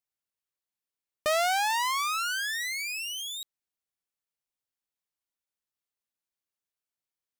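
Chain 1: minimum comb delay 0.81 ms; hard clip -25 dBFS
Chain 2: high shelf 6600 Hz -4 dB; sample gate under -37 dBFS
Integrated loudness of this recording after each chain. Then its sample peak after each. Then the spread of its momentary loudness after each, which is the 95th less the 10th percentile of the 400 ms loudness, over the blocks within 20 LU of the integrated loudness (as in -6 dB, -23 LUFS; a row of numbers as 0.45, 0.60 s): -31.0, -29.0 LUFS; -25.0, -20.0 dBFS; 10, 11 LU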